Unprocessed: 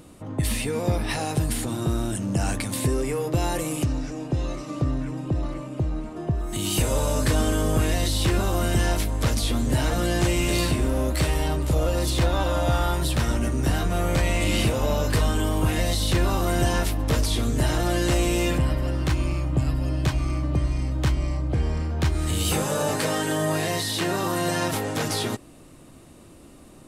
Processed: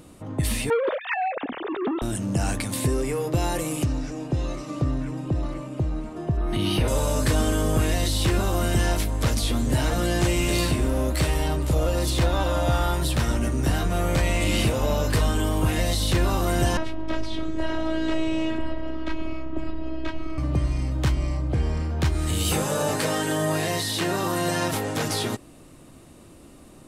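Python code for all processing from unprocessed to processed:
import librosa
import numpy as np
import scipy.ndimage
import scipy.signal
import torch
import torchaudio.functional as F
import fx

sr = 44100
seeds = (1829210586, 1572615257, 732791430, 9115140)

y = fx.chain(x, sr, fx.sine_speech(),
    fx.transformer_sat(knee_hz=770.0), at=(0.7, 2.02))
y = fx.chain(y, sr, fx.moving_average(points=6),
    fx.env_flatten(amount_pct=50), at=(6.37, 6.88))
y = fx.chain(y, sr, fx.lowpass(hz=3000.0, slope=12),
    fx.robotise(hz=320.0), at=(16.77, 20.38))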